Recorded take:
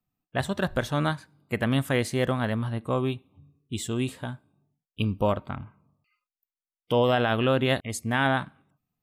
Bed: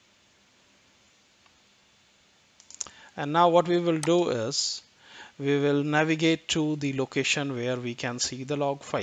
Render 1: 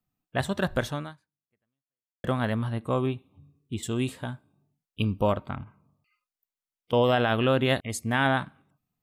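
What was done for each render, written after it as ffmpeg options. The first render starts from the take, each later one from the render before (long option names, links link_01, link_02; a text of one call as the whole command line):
ffmpeg -i in.wav -filter_complex "[0:a]asettb=1/sr,asplit=3[link_01][link_02][link_03];[link_01]atrim=end=3.064[link_04];[link_02]atrim=start=3.06:end=3.83,asetpts=PTS-STARTPTS,afade=type=in:duration=0.004:curve=qsin,afade=type=out:start_time=0.766:duration=0.004:curve=qsin,acrossover=split=2700[link_05][link_06];[link_06]acompressor=threshold=-49dB:ratio=4:attack=1:release=60[link_07];[link_05][link_07]amix=inputs=2:normalize=0[link_08];[link_03]atrim=start=3.826[link_09];[link_04][link_08]acrossfade=duration=0.004:curve1=hsin:curve2=qsin[link_10];[link_10][link_09]acrossfade=duration=0.004:curve1=qsin:curve2=hsin,asettb=1/sr,asplit=3[link_11][link_12][link_13];[link_11]atrim=end=5.634[link_14];[link_12]atrim=start=5.63:end=6.93,asetpts=PTS-STARTPTS,afade=type=in:duration=0.004:curve=qsin,afade=type=out:start_time=1.296:duration=0.004:curve=qsin,acompressor=threshold=-42dB:ratio=6:attack=3.2:release=140:knee=1:detection=peak[link_15];[link_13]atrim=start=6.926[link_16];[link_14][link_15]acrossfade=duration=0.004:curve1=hsin:curve2=qsin[link_17];[link_17][link_16]acrossfade=duration=0.004:curve1=qsin:curve2=hsin,asplit=2[link_18][link_19];[link_18]atrim=end=2.24,asetpts=PTS-STARTPTS,afade=type=out:start_time=0.88:duration=1.36:curve=exp[link_20];[link_19]atrim=start=2.24,asetpts=PTS-STARTPTS,afade=type=in:duration=0.004:curve=hsin[link_21];[link_20][link_21]concat=n=2:v=0:a=1" out.wav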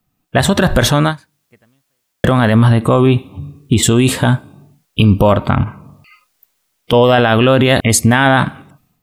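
ffmpeg -i in.wav -af "dynaudnorm=framelen=160:gausssize=5:maxgain=13.5dB,alimiter=level_in=14.5dB:limit=-1dB:release=50:level=0:latency=1" out.wav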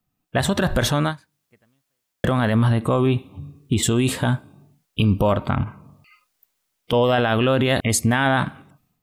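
ffmpeg -i in.wav -af "volume=-8dB" out.wav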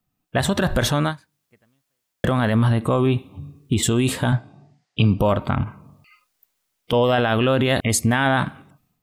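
ffmpeg -i in.wav -filter_complex "[0:a]asettb=1/sr,asplit=3[link_01][link_02][link_03];[link_01]atrim=end=4.324[link_04];[link_02]atrim=start=4.32:end=5.2,asetpts=PTS-STARTPTS,afade=type=in:duration=0.004:curve=qsin,afade=type=out:start_time=0.876:duration=0.004:curve=qsin,highpass=110,equalizer=frequency=120:width_type=q:width=4:gain=8,equalizer=frequency=730:width_type=q:width=4:gain=9,equalizer=frequency=1900:width_type=q:width=4:gain=8,equalizer=frequency=4800:width_type=q:width=4:gain=5,lowpass=frequency=7000:width=0.5412,lowpass=frequency=7000:width=1.3066[link_05];[link_03]atrim=start=5.196[link_06];[link_04][link_05]acrossfade=duration=0.004:curve1=hsin:curve2=qsin[link_07];[link_07][link_06]acrossfade=duration=0.004:curve1=qsin:curve2=hsin" out.wav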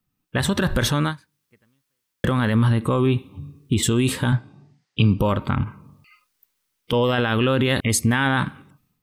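ffmpeg -i in.wav -af "equalizer=frequency=680:width=4.2:gain=-12,bandreject=frequency=7100:width=19" out.wav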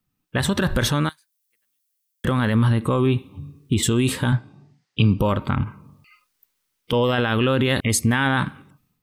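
ffmpeg -i in.wav -filter_complex "[0:a]asettb=1/sr,asplit=3[link_01][link_02][link_03];[link_01]atrim=end=1.094[link_04];[link_02]atrim=start=1.09:end=2.25,asetpts=PTS-STARTPTS,afade=type=in:duration=0.004:curve=qsin,afade=type=out:start_time=1.156:duration=0.004:curve=qsin,aderivative[link_05];[link_03]atrim=start=2.246[link_06];[link_04][link_05]acrossfade=duration=0.004:curve1=hsin:curve2=qsin[link_07];[link_07][link_06]acrossfade=duration=0.004:curve1=qsin:curve2=hsin" out.wav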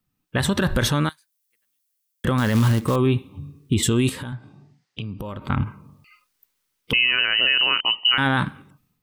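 ffmpeg -i in.wav -filter_complex "[0:a]asettb=1/sr,asplit=3[link_01][link_02][link_03];[link_01]atrim=end=2.384[link_04];[link_02]atrim=start=2.38:end=2.96,asetpts=PTS-STARTPTS,afade=type=in:duration=0.004:curve=qsin,afade=type=out:start_time=0.576:duration=0.004:curve=qsin,acrusher=bits=4:mode=log:mix=0:aa=0.000001[link_05];[link_03]atrim=start=2.956[link_06];[link_04][link_05]acrossfade=duration=0.004:curve1=hsin:curve2=qsin[link_07];[link_07][link_06]acrossfade=duration=0.004:curve1=qsin:curve2=hsin,asettb=1/sr,asplit=3[link_08][link_09][link_10];[link_08]atrim=end=4.094[link_11];[link_09]atrim=start=4.09:end=5.5,asetpts=PTS-STARTPTS,afade=type=in:duration=0.004:curve=qsin,afade=type=out:start_time=1.406:duration=0.004:curve=qsin,acompressor=threshold=-30dB:ratio=4:attack=3.2:release=140:knee=1:detection=peak[link_12];[link_10]atrim=start=5.496[link_13];[link_11][link_12]acrossfade=duration=0.004:curve1=hsin:curve2=qsin[link_14];[link_14][link_13]acrossfade=duration=0.004:curve1=qsin:curve2=hsin,asettb=1/sr,asplit=3[link_15][link_16][link_17];[link_15]atrim=end=6.934[link_18];[link_16]atrim=start=6.93:end=8.18,asetpts=PTS-STARTPTS,afade=type=in:duration=0.004:curve=qsin,afade=type=out:start_time=1.246:duration=0.004:curve=qsin,lowpass=frequency=2600:width_type=q:width=0.5098,lowpass=frequency=2600:width_type=q:width=0.6013,lowpass=frequency=2600:width_type=q:width=0.9,lowpass=frequency=2600:width_type=q:width=2.563,afreqshift=-3100[link_19];[link_17]atrim=start=8.176[link_20];[link_18][link_19]acrossfade=duration=0.004:curve1=hsin:curve2=qsin[link_21];[link_21][link_20]acrossfade=duration=0.004:curve1=qsin:curve2=hsin" out.wav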